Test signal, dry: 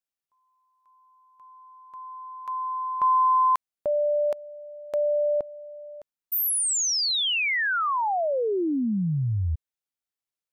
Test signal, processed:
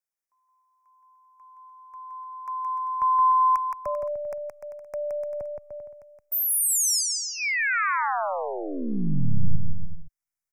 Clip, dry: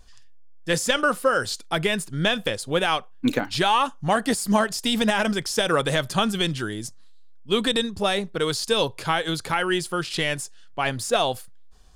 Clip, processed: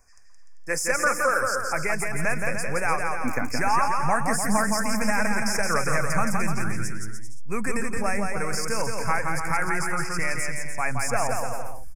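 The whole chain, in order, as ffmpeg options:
ffmpeg -i in.wav -filter_complex "[0:a]asuperstop=centerf=3500:order=12:qfactor=1.4,lowshelf=frequency=360:gain=-11,acrossover=split=130|1700[link_01][link_02][link_03];[link_01]aeval=exprs='abs(val(0))':channel_layout=same[link_04];[link_04][link_02][link_03]amix=inputs=3:normalize=0,asubboost=boost=11.5:cutoff=110,aecho=1:1:170|297.5|393.1|464.8|518.6:0.631|0.398|0.251|0.158|0.1" out.wav

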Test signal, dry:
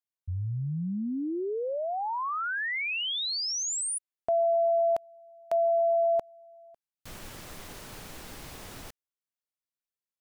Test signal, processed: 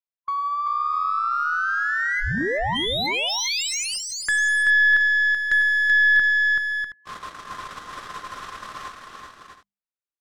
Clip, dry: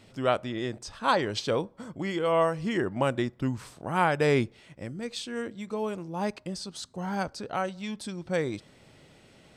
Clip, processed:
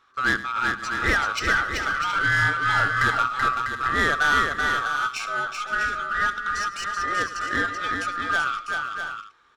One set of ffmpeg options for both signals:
ffmpeg -i in.wav -filter_complex "[0:a]afftfilt=real='real(if(lt(b,960),b+48*(1-2*mod(floor(b/48),2)),b),0)':imag='imag(if(lt(b,960),b+48*(1-2*mod(floor(b/48),2)),b),0)':win_size=2048:overlap=0.75,bandreject=frequency=50:width_type=h:width=6,bandreject=frequency=100:width_type=h:width=6,bandreject=frequency=150:width_type=h:width=6,bandreject=frequency=200:width_type=h:width=6,bandreject=frequency=250:width_type=h:width=6,agate=range=-14dB:threshold=-47dB:ratio=16:release=32:detection=peak,asplit=2[link_01][link_02];[link_02]acompressor=threshold=-36dB:ratio=6:attack=53:release=517:detection=rms,volume=-1dB[link_03];[link_01][link_03]amix=inputs=2:normalize=0,asoftclip=type=tanh:threshold=-16.5dB,aeval=exprs='0.15*(cos(1*acos(clip(val(0)/0.15,-1,1)))-cos(1*PI/2))+0.00188*(cos(4*acos(clip(val(0)/0.15,-1,1)))-cos(4*PI/2))+0.0168*(cos(6*acos(clip(val(0)/0.15,-1,1)))-cos(6*PI/2))+0.0119*(cos(8*acos(clip(val(0)/0.15,-1,1)))-cos(8*PI/2))':channel_layout=same,adynamicsmooth=sensitivity=3:basefreq=5600,aecho=1:1:103|382|521|648|723:0.158|0.596|0.126|0.398|0.168,volume=3dB" out.wav

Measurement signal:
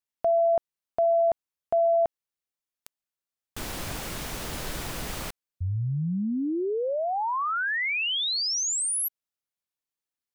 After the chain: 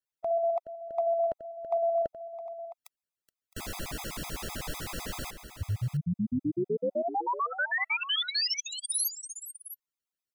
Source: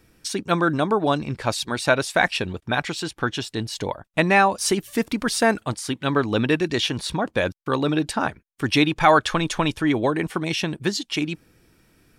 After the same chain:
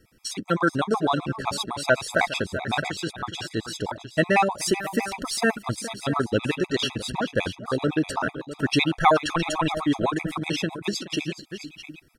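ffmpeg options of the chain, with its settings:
ffmpeg -i in.wav -af "aecho=1:1:423|663:0.2|0.224,afftfilt=real='re*gt(sin(2*PI*7.9*pts/sr)*(1-2*mod(floor(b*sr/1024/660),2)),0)':imag='im*gt(sin(2*PI*7.9*pts/sr)*(1-2*mod(floor(b*sr/1024/660),2)),0)':win_size=1024:overlap=0.75" out.wav

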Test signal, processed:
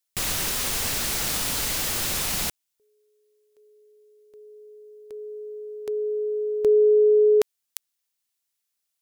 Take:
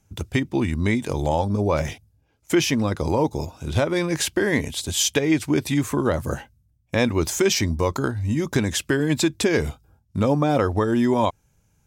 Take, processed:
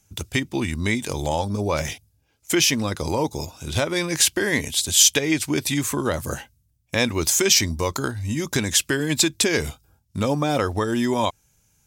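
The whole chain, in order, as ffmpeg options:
ffmpeg -i in.wav -af "highshelf=frequency=2200:gain=12,volume=-3dB" out.wav

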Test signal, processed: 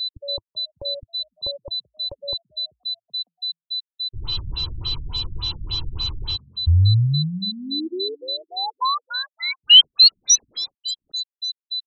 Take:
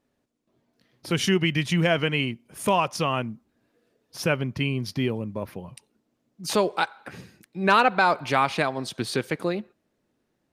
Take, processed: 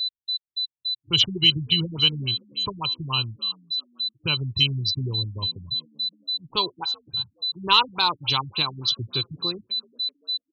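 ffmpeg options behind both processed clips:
ffmpeg -i in.wav -filter_complex "[0:a]afftdn=noise_reduction=33:noise_floor=-36,firequalizer=gain_entry='entry(100,0);entry(220,-22);entry(330,-12);entry(640,-27);entry(970,-5);entry(1800,-25);entry(3000,9);entry(10000,-10)':delay=0.05:min_phase=1,asplit=2[link_01][link_02];[link_02]asplit=3[link_03][link_04][link_05];[link_03]adelay=384,afreqshift=55,volume=-23dB[link_06];[link_04]adelay=768,afreqshift=110,volume=-28.8dB[link_07];[link_05]adelay=1152,afreqshift=165,volume=-34.7dB[link_08];[link_06][link_07][link_08]amix=inputs=3:normalize=0[link_09];[link_01][link_09]amix=inputs=2:normalize=0,aexciter=amount=2.4:drive=2.9:freq=7000,aeval=exprs='val(0)+0.0316*sin(2*PI*4000*n/s)':channel_layout=same,asplit=2[link_10][link_11];[link_11]asoftclip=type=hard:threshold=-18dB,volume=-5.5dB[link_12];[link_10][link_12]amix=inputs=2:normalize=0,afftfilt=real='re*lt(b*sr/1024,270*pow(7700/270,0.5+0.5*sin(2*PI*3.5*pts/sr)))':imag='im*lt(b*sr/1024,270*pow(7700/270,0.5+0.5*sin(2*PI*3.5*pts/sr)))':win_size=1024:overlap=0.75,volume=4dB" out.wav

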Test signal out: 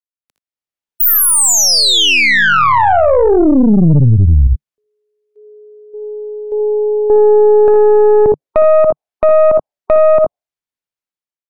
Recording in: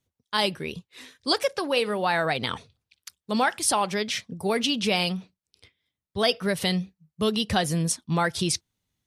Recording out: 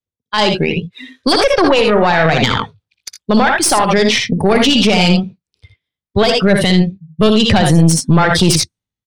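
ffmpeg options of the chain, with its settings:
ffmpeg -i in.wav -filter_complex "[0:a]dynaudnorm=framelen=140:gausssize=7:maxgain=15dB,adynamicequalizer=threshold=0.0316:dfrequency=150:dqfactor=4.3:tfrequency=150:tqfactor=4.3:attack=5:release=100:ratio=0.375:range=1.5:mode=boostabove:tftype=bell,afftdn=noise_reduction=23:noise_floor=-29,highshelf=frequency=7000:gain=-8.5,aecho=1:1:61|80:0.355|0.316,acrossover=split=210[link_01][link_02];[link_02]acompressor=threshold=-14dB:ratio=5[link_03];[link_01][link_03]amix=inputs=2:normalize=0,aeval=exprs='(tanh(3.55*val(0)+0.6)-tanh(0.6))/3.55':channel_layout=same,alimiter=level_in=15.5dB:limit=-1dB:release=50:level=0:latency=1,volume=-1dB" out.wav

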